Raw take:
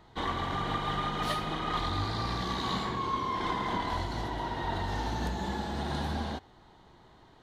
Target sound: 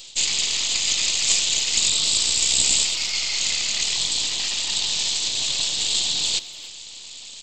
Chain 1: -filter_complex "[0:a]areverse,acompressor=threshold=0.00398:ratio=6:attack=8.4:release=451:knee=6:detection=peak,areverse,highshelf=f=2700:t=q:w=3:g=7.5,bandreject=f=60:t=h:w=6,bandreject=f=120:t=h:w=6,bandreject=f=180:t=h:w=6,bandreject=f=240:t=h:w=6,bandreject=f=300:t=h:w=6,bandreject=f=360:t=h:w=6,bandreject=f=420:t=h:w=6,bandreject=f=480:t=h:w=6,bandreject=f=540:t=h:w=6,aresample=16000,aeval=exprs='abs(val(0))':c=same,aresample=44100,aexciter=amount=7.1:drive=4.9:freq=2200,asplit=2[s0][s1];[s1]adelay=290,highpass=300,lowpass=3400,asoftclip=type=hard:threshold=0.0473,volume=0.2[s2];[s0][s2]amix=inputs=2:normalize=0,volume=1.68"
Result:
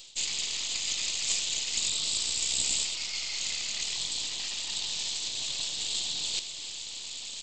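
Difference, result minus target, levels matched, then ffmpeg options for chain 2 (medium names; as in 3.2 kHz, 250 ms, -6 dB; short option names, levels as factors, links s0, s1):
compression: peak gain reduction +9.5 dB
-filter_complex "[0:a]areverse,acompressor=threshold=0.015:ratio=6:attack=8.4:release=451:knee=6:detection=peak,areverse,highshelf=f=2700:t=q:w=3:g=7.5,bandreject=f=60:t=h:w=6,bandreject=f=120:t=h:w=6,bandreject=f=180:t=h:w=6,bandreject=f=240:t=h:w=6,bandreject=f=300:t=h:w=6,bandreject=f=360:t=h:w=6,bandreject=f=420:t=h:w=6,bandreject=f=480:t=h:w=6,bandreject=f=540:t=h:w=6,aresample=16000,aeval=exprs='abs(val(0))':c=same,aresample=44100,aexciter=amount=7.1:drive=4.9:freq=2200,asplit=2[s0][s1];[s1]adelay=290,highpass=300,lowpass=3400,asoftclip=type=hard:threshold=0.0473,volume=0.2[s2];[s0][s2]amix=inputs=2:normalize=0,volume=1.68"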